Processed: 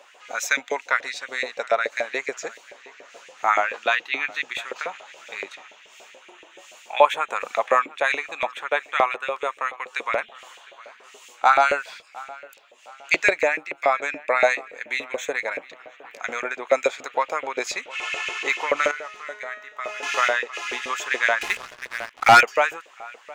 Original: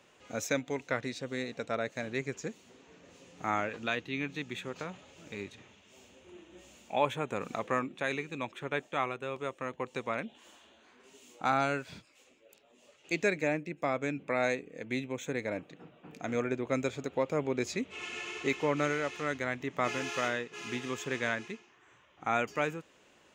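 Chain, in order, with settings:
delay with a low-pass on its return 707 ms, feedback 39%, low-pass 4,000 Hz, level −21 dB
auto-filter high-pass saw up 7 Hz 500–2,400 Hz
0:18.91–0:20.03: tuned comb filter 210 Hz, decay 0.6 s, harmonics all, mix 80%
0:21.41–0:22.41: leveller curve on the samples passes 3
level +9 dB

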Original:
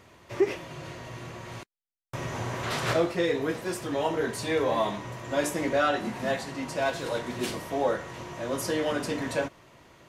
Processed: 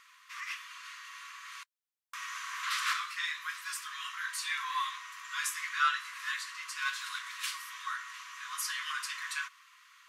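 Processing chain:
linear-phase brick-wall high-pass 1,000 Hz

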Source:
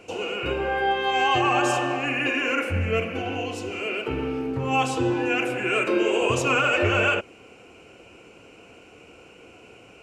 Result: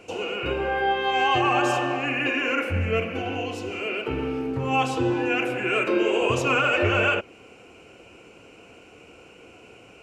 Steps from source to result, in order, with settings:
dynamic equaliser 8,400 Hz, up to −6 dB, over −48 dBFS, Q 1.1

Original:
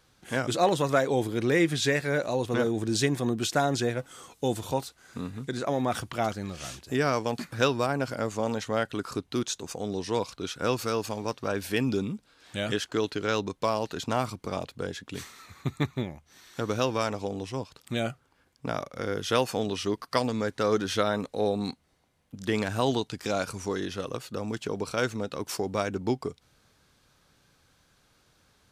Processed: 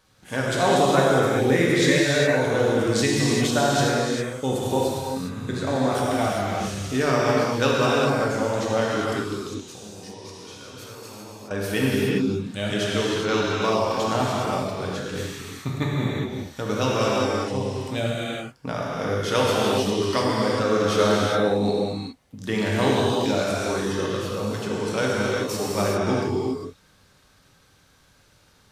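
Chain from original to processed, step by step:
0:09.31–0:11.51: output level in coarse steps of 23 dB
reverb whose tail is shaped and stops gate 430 ms flat, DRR −5.5 dB

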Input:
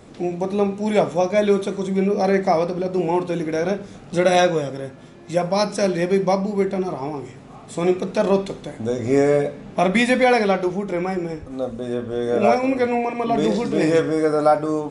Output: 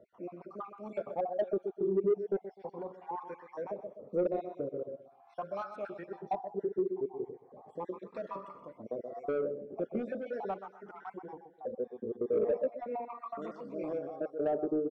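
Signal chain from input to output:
time-frequency cells dropped at random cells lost 52%
on a send: repeating echo 126 ms, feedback 28%, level −12 dB
on the sum: LFO wah 0.39 Hz 390–1,300 Hz, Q 4.5
in parallel at −2 dB: downward compressor, threshold −36 dBFS, peak gain reduction 17 dB
on the sum: soft clipping −21 dBFS, distortion −12 dB
tilt shelving filter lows +6.5 dB, about 1,300 Hz
phaser whose notches keep moving one way rising 0.23 Hz
level −6 dB

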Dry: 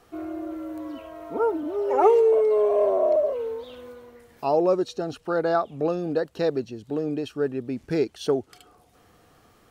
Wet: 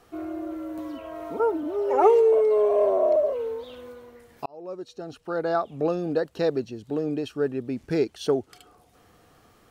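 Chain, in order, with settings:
0:00.78–0:01.40: multiband upward and downward compressor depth 100%
0:04.46–0:05.83: fade in

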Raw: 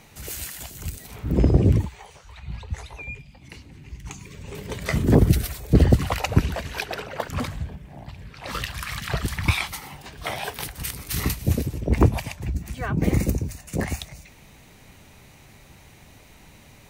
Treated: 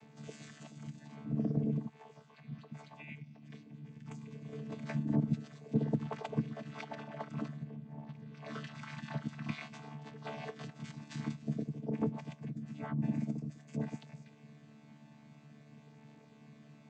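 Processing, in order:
channel vocoder with a chord as carrier bare fifth, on D3
downward compressor 1.5 to 1, threshold −40 dBFS, peak gain reduction 10.5 dB
level −4 dB

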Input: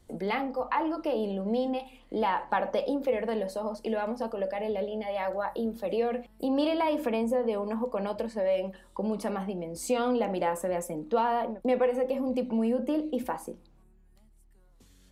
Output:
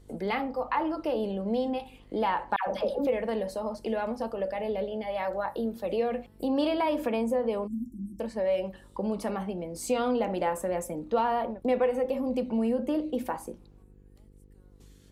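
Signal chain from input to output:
hum with harmonics 50 Hz, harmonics 10, −56 dBFS −5 dB per octave
0:02.56–0:03.07: all-pass dispersion lows, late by 110 ms, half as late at 880 Hz
0:07.67–0:08.20: time-frequency box erased 350–5,400 Hz

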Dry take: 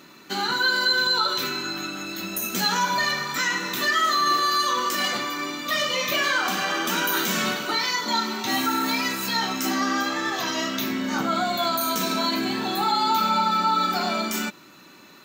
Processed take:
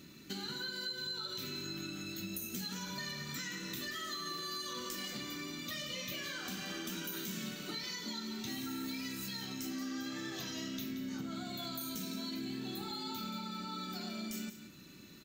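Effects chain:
guitar amp tone stack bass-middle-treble 10-0-1
downward compressor, threshold −54 dBFS, peak gain reduction 13 dB
on a send: single-tap delay 176 ms −11 dB
on the sum: level +15 dB

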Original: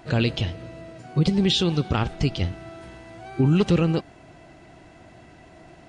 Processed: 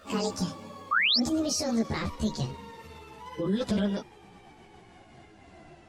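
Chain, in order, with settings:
pitch glide at a constant tempo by +10.5 semitones ending unshifted
sound drawn into the spectrogram rise, 0:00.91–0:01.19, 1,100–5,700 Hz −14 dBFS
brickwall limiter −17 dBFS, peak gain reduction 10 dB
string-ensemble chorus

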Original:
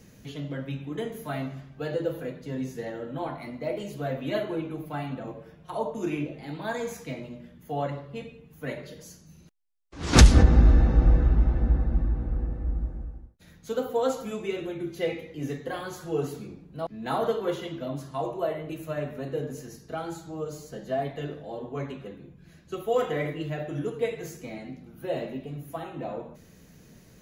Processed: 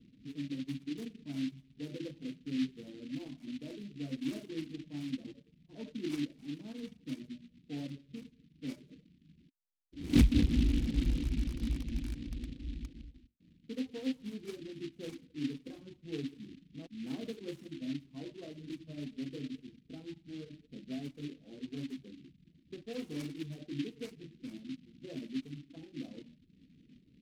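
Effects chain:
loose part that buzzes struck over −21 dBFS, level −24 dBFS
reverb reduction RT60 0.56 s
formant resonators in series i
low-pass that shuts in the quiet parts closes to 470 Hz, open at −33.5 dBFS
short delay modulated by noise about 2,900 Hz, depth 0.087 ms
level +1 dB

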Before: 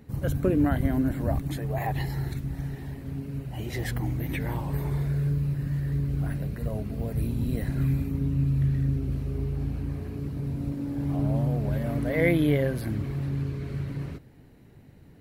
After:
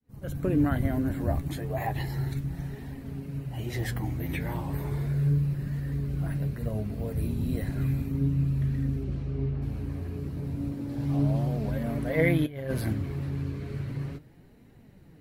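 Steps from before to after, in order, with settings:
fade in at the beginning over 0.55 s
0:09.03–0:09.61: low-pass filter 7,600 Hz → 3,200 Hz 12 dB per octave
0:10.89–0:11.71: parametric band 4,600 Hz +5 dB 1.5 octaves
0:12.46–0:12.93: compressor whose output falls as the input rises −28 dBFS, ratio −0.5
flanger 0.34 Hz, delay 3.7 ms, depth 8.8 ms, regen +54%
level +3 dB

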